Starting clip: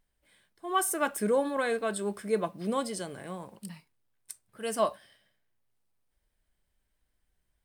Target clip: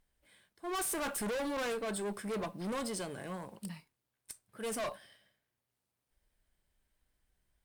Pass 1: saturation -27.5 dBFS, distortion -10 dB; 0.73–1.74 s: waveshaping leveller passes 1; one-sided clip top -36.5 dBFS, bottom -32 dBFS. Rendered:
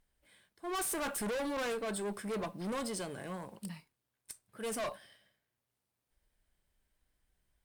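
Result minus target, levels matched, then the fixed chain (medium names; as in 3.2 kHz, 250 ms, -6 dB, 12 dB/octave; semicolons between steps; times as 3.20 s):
saturation: distortion +9 dB
saturation -19.5 dBFS, distortion -18 dB; 0.73–1.74 s: waveshaping leveller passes 1; one-sided clip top -36.5 dBFS, bottom -32 dBFS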